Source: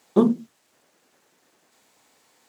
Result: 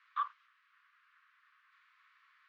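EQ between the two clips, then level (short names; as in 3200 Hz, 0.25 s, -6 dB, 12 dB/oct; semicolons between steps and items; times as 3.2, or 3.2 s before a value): steep high-pass 1100 Hz 96 dB/oct; LPF 1900 Hz 12 dB/oct; air absorption 170 m; +5.0 dB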